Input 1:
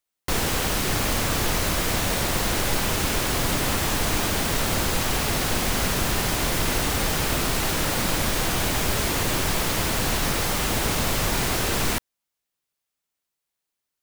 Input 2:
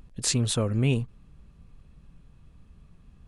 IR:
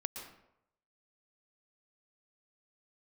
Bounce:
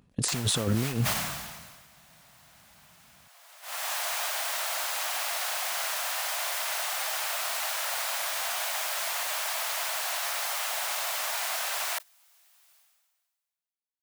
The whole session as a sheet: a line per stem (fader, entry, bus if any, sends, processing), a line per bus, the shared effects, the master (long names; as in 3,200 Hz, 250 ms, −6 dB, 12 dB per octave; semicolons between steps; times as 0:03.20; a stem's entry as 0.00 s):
−5.0 dB, 0.00 s, no send, elliptic high-pass filter 640 Hz, stop band 60 dB; high-shelf EQ 9,600 Hz +3 dB; automatic ducking −12 dB, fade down 0.50 s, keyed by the second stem
+2.5 dB, 0.00 s, no send, high-pass filter 120 Hz 12 dB per octave; compressor whose output falls as the input rises −31 dBFS, ratio −0.5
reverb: not used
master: noise gate −35 dBFS, range −14 dB; level that may fall only so fast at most 38 dB per second